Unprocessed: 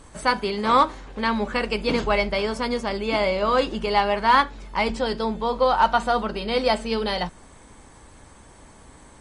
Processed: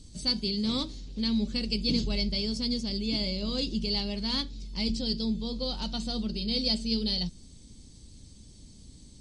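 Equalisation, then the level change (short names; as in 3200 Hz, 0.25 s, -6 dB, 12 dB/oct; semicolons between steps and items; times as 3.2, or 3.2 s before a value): EQ curve 220 Hz 0 dB, 970 Hz -28 dB, 1600 Hz -26 dB, 4600 Hz +6 dB, 9800 Hz -8 dB; 0.0 dB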